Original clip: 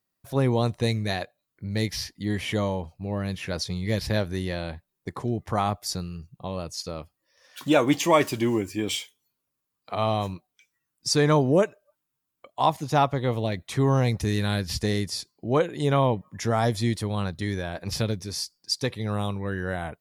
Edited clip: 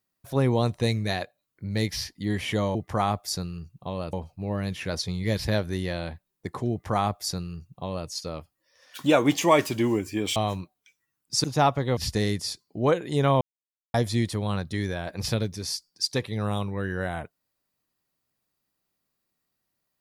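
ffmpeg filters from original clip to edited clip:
-filter_complex "[0:a]asplit=8[s0][s1][s2][s3][s4][s5][s6][s7];[s0]atrim=end=2.752[s8];[s1]atrim=start=5.328:end=6.712[s9];[s2]atrim=start=2.748:end=8.982[s10];[s3]atrim=start=10.088:end=11.172[s11];[s4]atrim=start=12.798:end=13.332[s12];[s5]atrim=start=14.648:end=16.09,asetpts=PTS-STARTPTS,afade=t=out:st=1.438:d=0.004:c=hsin[s13];[s6]atrim=start=16.09:end=16.62,asetpts=PTS-STARTPTS,volume=0[s14];[s7]atrim=start=16.62,asetpts=PTS-STARTPTS,afade=t=in:d=0.004:c=hsin[s15];[s8][s9]acrossfade=d=0.004:c1=hsin:c2=hsin[s16];[s16][s10]acrossfade=d=0.004:c1=hsin:c2=hsin[s17];[s17][s11]acrossfade=d=0.004:c1=hsin:c2=hsin[s18];[s18][s12]acrossfade=d=0.004:c1=hsin:c2=hsin[s19];[s13][s14][s15]concat=n=3:v=0:a=1[s20];[s19][s20]acrossfade=d=0.004:c1=hsin:c2=hsin"

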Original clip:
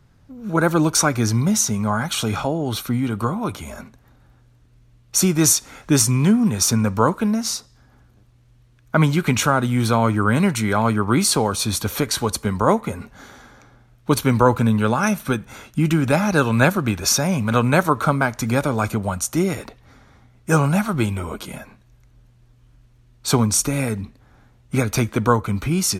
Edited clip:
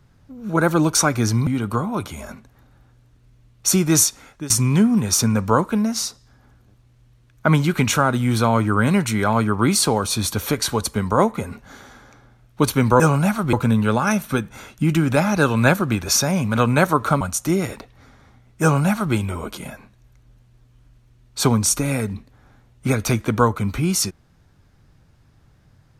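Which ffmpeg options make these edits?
-filter_complex "[0:a]asplit=6[s0][s1][s2][s3][s4][s5];[s0]atrim=end=1.472[s6];[s1]atrim=start=2.958:end=5.99,asetpts=PTS-STARTPTS,afade=t=out:st=2.552:d=0.48:silence=0.0944061[s7];[s2]atrim=start=5.99:end=14.492,asetpts=PTS-STARTPTS,afade=t=in:d=0.004:c=hsin:silence=0.0944061[s8];[s3]atrim=start=20.498:end=21.032[s9];[s4]atrim=start=14.488:end=18.172[s10];[s5]atrim=start=19.088[s11];[s7][s8]concat=n=2:v=0:a=1[s12];[s6][s12]acrossfade=d=0.004:c1=hsin:c2=hsin[s13];[s13][s9]acrossfade=d=0.004:c1=hsin:c2=hsin[s14];[s14][s10]acrossfade=d=0.004:c1=hsin:c2=hsin[s15];[s15][s11]acrossfade=d=0.004:c1=hsin:c2=hsin"

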